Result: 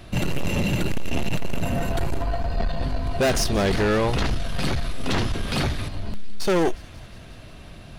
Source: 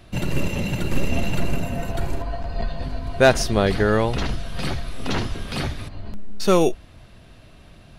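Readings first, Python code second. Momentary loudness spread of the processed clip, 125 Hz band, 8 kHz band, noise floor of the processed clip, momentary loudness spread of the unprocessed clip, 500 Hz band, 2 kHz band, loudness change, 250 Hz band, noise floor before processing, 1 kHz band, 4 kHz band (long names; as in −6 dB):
20 LU, −0.5 dB, +0.5 dB, −42 dBFS, 13 LU, −3.5 dB, −2.0 dB, −1.5 dB, −1.0 dB, −47 dBFS, −2.0 dB, +0.5 dB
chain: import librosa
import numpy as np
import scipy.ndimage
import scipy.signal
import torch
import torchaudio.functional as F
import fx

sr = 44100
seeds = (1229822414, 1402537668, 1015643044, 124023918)

p1 = 10.0 ** (-22.0 / 20.0) * np.tanh(x / 10.0 ** (-22.0 / 20.0))
p2 = p1 + fx.echo_wet_highpass(p1, sr, ms=180, feedback_pct=74, hz=1900.0, wet_db=-19.0, dry=0)
y = p2 * 10.0 ** (5.0 / 20.0)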